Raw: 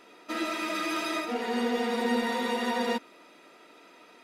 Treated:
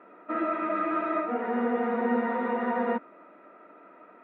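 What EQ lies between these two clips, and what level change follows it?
high-frequency loss of the air 150 metres
loudspeaker in its box 180–2,000 Hz, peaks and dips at 190 Hz +7 dB, 300 Hz +3 dB, 620 Hz +7 dB, 1,300 Hz +7 dB
0.0 dB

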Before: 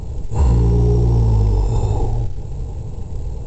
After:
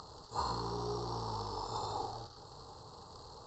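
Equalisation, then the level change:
pair of resonant band-passes 2,300 Hz, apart 1.9 octaves
+7.5 dB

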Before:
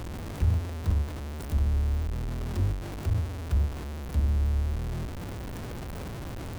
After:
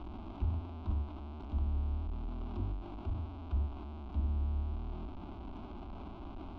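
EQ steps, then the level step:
low-pass filter 3,100 Hz 24 dB per octave
phaser with its sweep stopped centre 490 Hz, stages 6
−4.5 dB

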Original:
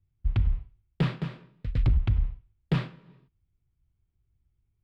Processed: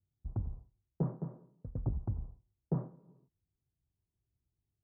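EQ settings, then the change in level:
high-pass filter 220 Hz 6 dB per octave
inverse Chebyshev low-pass filter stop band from 3,000 Hz, stop band 60 dB
high-frequency loss of the air 460 metres
−2.5 dB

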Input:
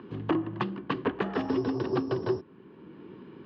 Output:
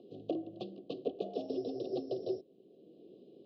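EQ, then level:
formant filter a
elliptic band-stop filter 540–3,800 Hz, stop band 40 dB
high-shelf EQ 2,700 Hz +10 dB
+11.5 dB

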